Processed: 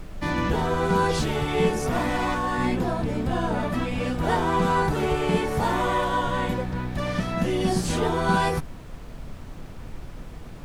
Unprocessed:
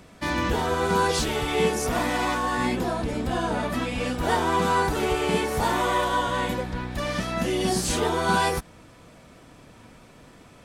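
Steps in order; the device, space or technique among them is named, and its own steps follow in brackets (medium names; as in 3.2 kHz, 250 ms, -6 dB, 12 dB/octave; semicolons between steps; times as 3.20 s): car interior (peaking EQ 150 Hz +7.5 dB 0.59 oct; treble shelf 3.4 kHz -7 dB; brown noise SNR 11 dB)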